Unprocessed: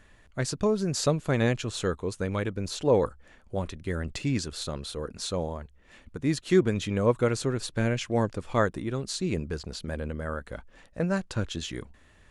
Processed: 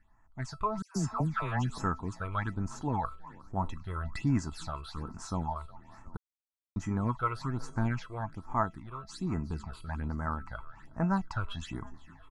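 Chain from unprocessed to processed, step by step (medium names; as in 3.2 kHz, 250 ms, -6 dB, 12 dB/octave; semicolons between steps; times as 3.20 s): FFT filter 280 Hz 0 dB, 540 Hz -16 dB, 870 Hz +13 dB, 2.9 kHz -8 dB; frequency-shifting echo 362 ms, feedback 55%, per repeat +30 Hz, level -21.5 dB; level rider gain up to 12 dB; feedback comb 660 Hz, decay 0.18 s, harmonics all, mix 80%; 0.82–1.78 s: phase dispersion lows, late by 139 ms, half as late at 1.4 kHz; phase shifter stages 8, 1.2 Hz, lowest notch 220–3900 Hz; 6.17–6.76 s: mute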